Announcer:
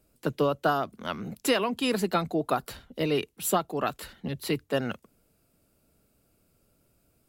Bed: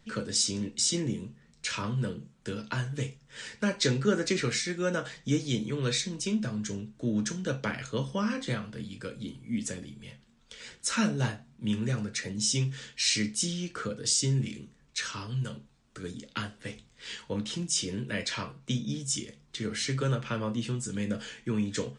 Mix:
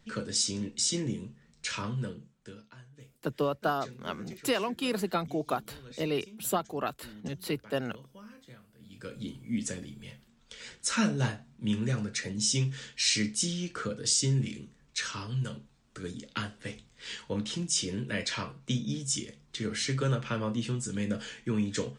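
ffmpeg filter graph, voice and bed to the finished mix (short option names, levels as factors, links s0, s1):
-filter_complex "[0:a]adelay=3000,volume=0.631[s0];[1:a]volume=8.91,afade=t=out:st=1.8:d=0.92:silence=0.112202,afade=t=in:st=8.79:d=0.43:silence=0.0944061[s1];[s0][s1]amix=inputs=2:normalize=0"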